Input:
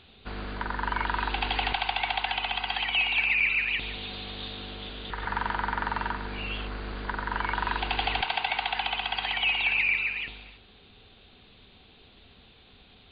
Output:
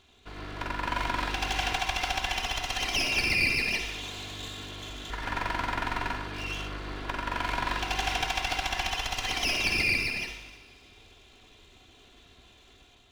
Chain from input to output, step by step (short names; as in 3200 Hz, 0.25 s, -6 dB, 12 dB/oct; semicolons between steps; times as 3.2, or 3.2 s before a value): minimum comb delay 2.9 ms; AGC gain up to 5 dB; on a send: reverb, pre-delay 49 ms, DRR 7 dB; on the sum: gain -5 dB